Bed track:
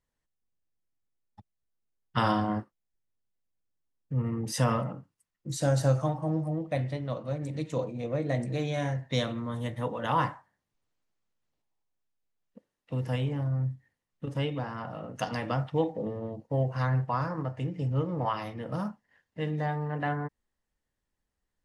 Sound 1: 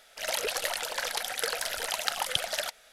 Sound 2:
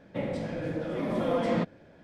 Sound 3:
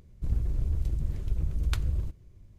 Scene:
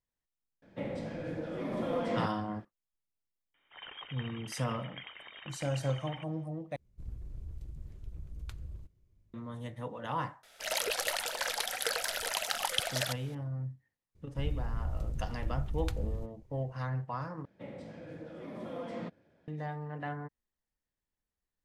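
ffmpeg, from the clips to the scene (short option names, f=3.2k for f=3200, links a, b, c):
-filter_complex "[2:a]asplit=2[a][b];[1:a]asplit=2[c][d];[3:a]asplit=2[e][f];[0:a]volume=-8dB[g];[c]lowpass=f=3.1k:t=q:w=0.5098,lowpass=f=3.1k:t=q:w=0.6013,lowpass=f=3.1k:t=q:w=0.9,lowpass=f=3.1k:t=q:w=2.563,afreqshift=-3700[h];[d]alimiter=limit=-8dB:level=0:latency=1:release=13[i];[b]highpass=51[j];[g]asplit=3[k][l][m];[k]atrim=end=6.764[n];[e]atrim=end=2.58,asetpts=PTS-STARTPTS,volume=-15dB[o];[l]atrim=start=9.336:end=17.454[p];[j]atrim=end=2.03,asetpts=PTS-STARTPTS,volume=-13dB[q];[m]atrim=start=19.476[r];[a]atrim=end=2.03,asetpts=PTS-STARTPTS,volume=-5.5dB,afade=t=in:d=0.004:c=hsin,afade=t=out:st=2.026:d=0.004:c=hsin,adelay=620[s];[h]atrim=end=2.92,asetpts=PTS-STARTPTS,volume=-14dB,afade=t=in:d=0.004:c=hsin,afade=t=out:st=2.916:d=0.004:c=hsin,adelay=3540[t];[i]atrim=end=2.92,asetpts=PTS-STARTPTS,volume=-2dB,afade=t=in:d=0.004:c=hsin,afade=t=out:st=2.916:d=0.004:c=hsin,adelay=10430[u];[f]atrim=end=2.58,asetpts=PTS-STARTPTS,volume=-6.5dB,afade=t=in:d=0.004:c=hsin,afade=t=out:st=2.576:d=0.004:c=hsin,adelay=14150[v];[n][o]acrossfade=d=0.004:c1=hsin:c2=hsin[w];[w][p]acrossfade=d=0.004:c1=hsin:c2=hsin[x];[x][q]acrossfade=d=0.004:c1=hsin:c2=hsin[y];[y][r]acrossfade=d=0.004:c1=hsin:c2=hsin[z];[z][s][t][u][v]amix=inputs=5:normalize=0"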